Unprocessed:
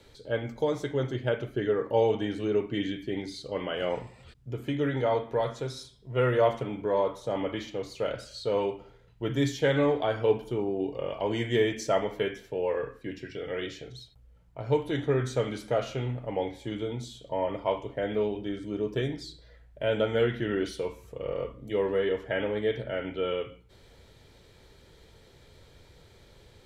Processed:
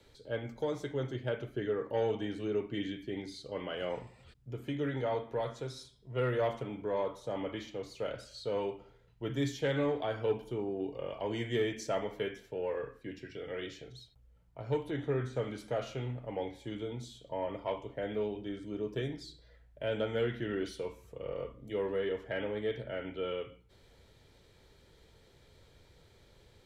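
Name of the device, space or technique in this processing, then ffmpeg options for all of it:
one-band saturation: -filter_complex "[0:a]asettb=1/sr,asplit=3[a][b][c];[a]atrim=end=14.904[d];[b]atrim=start=14.9:end=15.58,asetpts=PTS-STARTPTS,afade=t=in:d=0.004:c=qsin,afade=t=out:st=0.676:d=0.004:c=qsin,acrossover=split=2700[e][f];[f]acompressor=threshold=-53dB:ratio=4:attack=1:release=60[g];[e][g]amix=inputs=2:normalize=0[h];[c]atrim=start=15.576[i];[d][h]acrossfade=d=0.004:c1=hsin:c2=qsin[j];[j][i]acrossfade=d=0.004:c1=qsin:c2=hsin,acrossover=split=350|2600[k][l][m];[l]asoftclip=type=tanh:threshold=-20dB[n];[k][n][m]amix=inputs=3:normalize=0,volume=-6dB"

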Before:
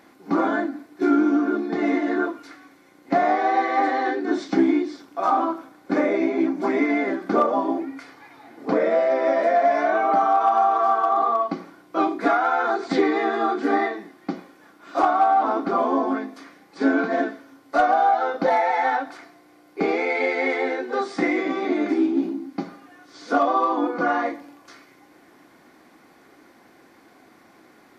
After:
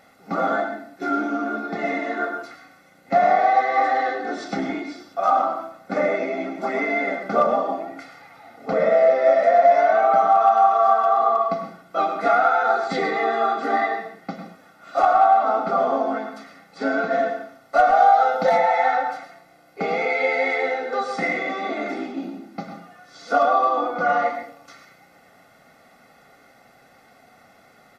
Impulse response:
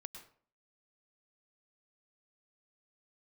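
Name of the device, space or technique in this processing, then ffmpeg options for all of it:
microphone above a desk: -filter_complex "[0:a]aecho=1:1:1.5:0.8[a];[1:a]atrim=start_sample=2205[b];[a][b]afir=irnorm=-1:irlink=0,asettb=1/sr,asplit=3[c][d][e];[c]atrim=end=17.954[f];[d]atrim=start=17.95:end=18.57,asetpts=PTS-STARTPTS,afade=t=in:d=0.004:c=qsin,afade=t=out:st=0.616:d=0.004:c=qsin,highshelf=f=5k:g=10[g];[e]atrim=start=18.566[h];[f][g]acrossfade=d=0.004:c1=hsin:c2=qsin[i];[i][h]acrossfade=d=0.004:c1=qsin:c2=hsin,volume=4dB"

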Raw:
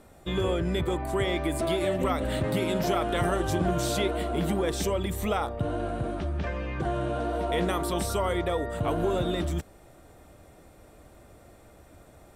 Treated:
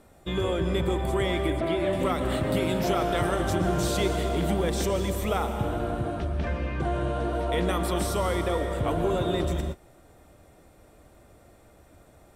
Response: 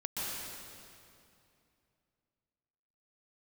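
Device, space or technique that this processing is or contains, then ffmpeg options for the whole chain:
keyed gated reverb: -filter_complex "[0:a]asplit=3[a][b][c];[1:a]atrim=start_sample=2205[d];[b][d]afir=irnorm=-1:irlink=0[e];[c]apad=whole_len=544926[f];[e][f]sidechaingate=range=-33dB:threshold=-43dB:ratio=16:detection=peak,volume=-8dB[g];[a][g]amix=inputs=2:normalize=0,asettb=1/sr,asplit=3[h][i][j];[h]atrim=end=1.504[k];[i]atrim=start=1.5:end=1.93,asetpts=PTS-STARTPTS,afade=t=in:d=0.004:c=qsin,afade=t=out:st=0.426:d=0.004:c=qsin,acrossover=split=3500[l][m];[m]acompressor=threshold=-52dB:ratio=4:attack=1:release=60[n];[l][n]amix=inputs=2:normalize=0[o];[j]atrim=start=1.926[p];[k][o]acrossfade=d=0.004:c1=hsin:c2=qsin[q];[q][p]acrossfade=d=0.004:c1=qsin:c2=hsin,volume=-2dB"

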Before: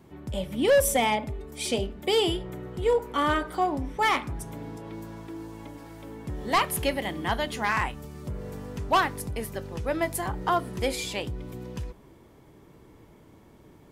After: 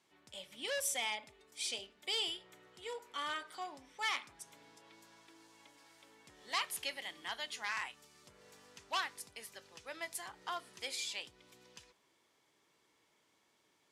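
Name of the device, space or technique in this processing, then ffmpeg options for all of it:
piezo pickup straight into a mixer: -af "lowpass=5.4k,aderivative,volume=1dB"

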